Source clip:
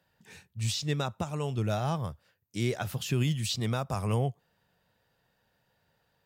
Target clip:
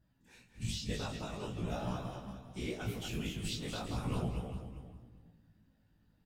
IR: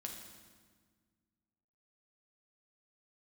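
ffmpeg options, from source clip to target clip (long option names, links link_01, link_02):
-filter_complex "[0:a]aeval=exprs='val(0)+0.00112*(sin(2*PI*50*n/s)+sin(2*PI*2*50*n/s)/2+sin(2*PI*3*50*n/s)/3+sin(2*PI*4*50*n/s)/4+sin(2*PI*5*50*n/s)/5)':channel_layout=same,aecho=1:1:29.15|239.1:0.631|0.562,asplit=2[link_01][link_02];[1:a]atrim=start_sample=2205[link_03];[link_02][link_03]afir=irnorm=-1:irlink=0,volume=-1dB[link_04];[link_01][link_04]amix=inputs=2:normalize=0,afftfilt=real='hypot(re,im)*cos(2*PI*random(0))':imag='hypot(re,im)*sin(2*PI*random(1))':win_size=512:overlap=0.75,asplit=2[link_05][link_06];[link_06]aecho=0:1:401|802:0.237|0.0403[link_07];[link_05][link_07]amix=inputs=2:normalize=0,adynamicequalizer=threshold=0.00141:dfrequency=2700:dqfactor=2.6:tfrequency=2700:tqfactor=2.6:attack=5:release=100:ratio=0.375:range=2:mode=boostabove:tftype=bell,flanger=delay=15.5:depth=3.4:speed=0.43,volume=-5.5dB"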